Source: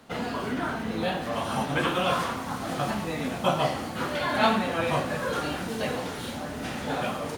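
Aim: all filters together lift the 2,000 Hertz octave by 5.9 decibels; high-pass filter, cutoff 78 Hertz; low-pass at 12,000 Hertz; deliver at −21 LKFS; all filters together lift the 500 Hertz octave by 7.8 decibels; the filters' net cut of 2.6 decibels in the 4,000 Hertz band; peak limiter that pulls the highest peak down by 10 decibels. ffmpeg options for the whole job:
ffmpeg -i in.wav -af "highpass=78,lowpass=12000,equalizer=frequency=500:width_type=o:gain=9,equalizer=frequency=2000:width_type=o:gain=9,equalizer=frequency=4000:width_type=o:gain=-8,volume=4.5dB,alimiter=limit=-10dB:level=0:latency=1" out.wav

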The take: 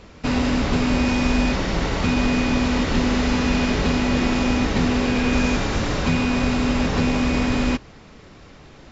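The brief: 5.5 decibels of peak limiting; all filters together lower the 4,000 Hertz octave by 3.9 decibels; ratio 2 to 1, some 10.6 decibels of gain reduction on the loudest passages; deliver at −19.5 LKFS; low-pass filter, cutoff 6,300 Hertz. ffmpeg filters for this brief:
ffmpeg -i in.wav -af "lowpass=6300,equalizer=frequency=4000:width_type=o:gain=-4.5,acompressor=threshold=-36dB:ratio=2,volume=13.5dB,alimiter=limit=-10dB:level=0:latency=1" out.wav

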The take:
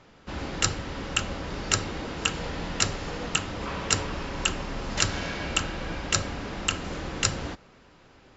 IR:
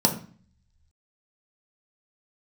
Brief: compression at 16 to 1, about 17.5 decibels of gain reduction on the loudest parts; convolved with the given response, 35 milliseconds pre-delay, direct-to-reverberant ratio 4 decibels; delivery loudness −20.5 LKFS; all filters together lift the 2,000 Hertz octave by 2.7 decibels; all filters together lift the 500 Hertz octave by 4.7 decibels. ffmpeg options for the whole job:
-filter_complex "[0:a]equalizer=frequency=500:width_type=o:gain=5.5,equalizer=frequency=2000:width_type=o:gain=3.5,acompressor=threshold=-35dB:ratio=16,asplit=2[link_01][link_02];[1:a]atrim=start_sample=2205,adelay=35[link_03];[link_02][link_03]afir=irnorm=-1:irlink=0,volume=-17.5dB[link_04];[link_01][link_04]amix=inputs=2:normalize=0,volume=16.5dB"

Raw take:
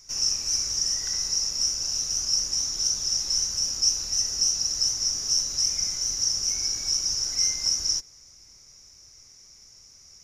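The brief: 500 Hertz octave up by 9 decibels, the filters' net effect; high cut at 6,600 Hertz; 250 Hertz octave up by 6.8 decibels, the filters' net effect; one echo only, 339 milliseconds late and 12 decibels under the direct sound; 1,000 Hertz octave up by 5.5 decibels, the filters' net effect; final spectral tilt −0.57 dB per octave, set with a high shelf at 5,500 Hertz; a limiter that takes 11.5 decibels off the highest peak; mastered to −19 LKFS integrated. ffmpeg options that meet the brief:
ffmpeg -i in.wav -af "lowpass=6600,equalizer=frequency=250:width_type=o:gain=6,equalizer=frequency=500:width_type=o:gain=8.5,equalizer=frequency=1000:width_type=o:gain=4.5,highshelf=frequency=5500:gain=-9,alimiter=level_in=2.5dB:limit=-24dB:level=0:latency=1,volume=-2.5dB,aecho=1:1:339:0.251,volume=14dB" out.wav

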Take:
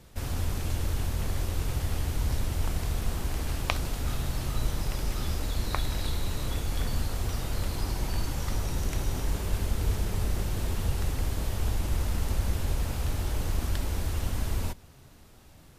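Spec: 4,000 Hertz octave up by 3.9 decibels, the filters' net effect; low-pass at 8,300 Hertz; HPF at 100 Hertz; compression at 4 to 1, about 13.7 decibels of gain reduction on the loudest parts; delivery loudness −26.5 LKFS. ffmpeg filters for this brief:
ffmpeg -i in.wav -af "highpass=100,lowpass=8300,equalizer=frequency=4000:width_type=o:gain=5,acompressor=threshold=-40dB:ratio=4,volume=16dB" out.wav

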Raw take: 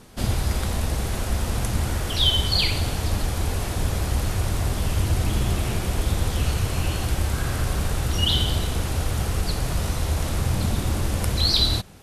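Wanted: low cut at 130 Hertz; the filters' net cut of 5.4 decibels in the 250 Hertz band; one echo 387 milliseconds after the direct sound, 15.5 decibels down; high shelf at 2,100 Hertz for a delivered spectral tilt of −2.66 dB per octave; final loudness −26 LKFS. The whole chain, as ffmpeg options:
ffmpeg -i in.wav -af "highpass=130,equalizer=frequency=250:width_type=o:gain=-7,highshelf=frequency=2100:gain=5.5,aecho=1:1:387:0.168,volume=-2.5dB" out.wav

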